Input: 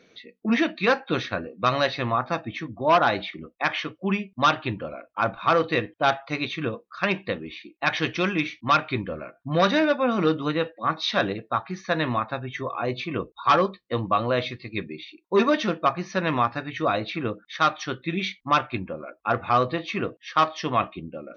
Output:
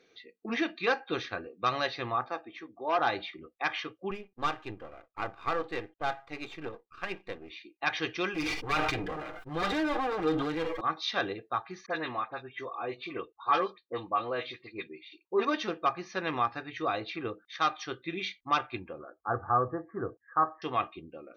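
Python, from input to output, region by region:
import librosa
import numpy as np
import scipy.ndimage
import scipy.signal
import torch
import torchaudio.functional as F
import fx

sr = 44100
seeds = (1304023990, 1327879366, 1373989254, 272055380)

y = fx.chain(x, sr, fx.highpass(hz=320.0, slope=12),
    fx.high_shelf(hz=2100.0, db=-8.0), at=(2.28, 2.99))
y = fx.chain(y, sr, fx.halfwave_gain(db=-12.0),
    fx.lowpass(hz=2300.0, slope=6), at=(4.11, 7.5))
y = fx.chain(y, sr, fx.lower_of_two(delay_ms=6.5),
    fx.high_shelf(hz=4000.0, db=-9.0),
    fx.sustainer(db_per_s=26.0), at=(8.34, 10.81))
y = fx.chain(y, sr, fx.highpass(hz=240.0, slope=6),
    fx.air_absorb(metres=140.0),
    fx.dispersion(late='highs', ms=49.0, hz=2000.0), at=(11.86, 15.45))
y = fx.chain(y, sr, fx.steep_lowpass(hz=1700.0, slope=96),
    fx.peak_eq(hz=89.0, db=9.0, octaves=1.3), at=(18.98, 20.62))
y = fx.low_shelf(y, sr, hz=220.0, db=-6.0)
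y = y + 0.44 * np.pad(y, (int(2.5 * sr / 1000.0), 0))[:len(y)]
y = F.gain(torch.from_numpy(y), -7.0).numpy()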